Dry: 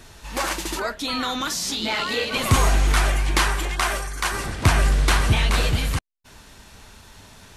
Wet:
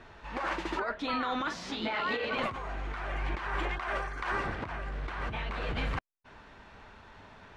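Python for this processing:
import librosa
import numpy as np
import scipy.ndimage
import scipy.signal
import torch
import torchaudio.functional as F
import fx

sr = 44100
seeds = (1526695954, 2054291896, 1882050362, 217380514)

y = scipy.signal.sosfilt(scipy.signal.butter(2, 1900.0, 'lowpass', fs=sr, output='sos'), x)
y = fx.low_shelf(y, sr, hz=290.0, db=-9.0)
y = fx.over_compress(y, sr, threshold_db=-30.0, ratio=-1.0)
y = y * 10.0 ** (-3.5 / 20.0)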